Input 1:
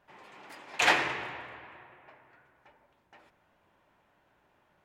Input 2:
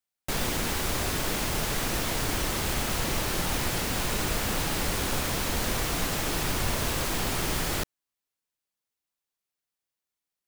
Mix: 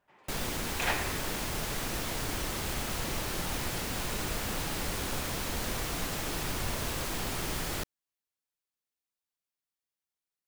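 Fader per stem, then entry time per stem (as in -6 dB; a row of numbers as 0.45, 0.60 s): -8.0, -5.5 dB; 0.00, 0.00 s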